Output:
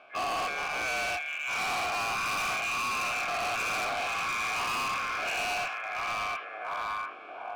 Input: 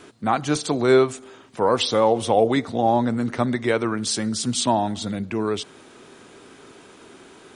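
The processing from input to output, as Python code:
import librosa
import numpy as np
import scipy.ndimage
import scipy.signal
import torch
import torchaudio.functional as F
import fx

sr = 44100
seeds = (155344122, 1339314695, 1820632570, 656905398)

y = fx.spec_dilate(x, sr, span_ms=240)
y = y * np.sin(2.0 * np.pi * 1900.0 * np.arange(len(y)) / sr)
y = fx.vowel_filter(y, sr, vowel='a')
y = fx.low_shelf(y, sr, hz=210.0, db=6.5)
y = fx.rider(y, sr, range_db=4, speed_s=2.0)
y = fx.high_shelf(y, sr, hz=4800.0, db=-12.0)
y = fx.echo_stepped(y, sr, ms=700, hz=2500.0, octaves=-0.7, feedback_pct=70, wet_db=-1.0)
y = np.clip(10.0 ** (33.5 / 20.0) * y, -1.0, 1.0) / 10.0 ** (33.5 / 20.0)
y = F.gain(torch.from_numpy(y), 4.5).numpy()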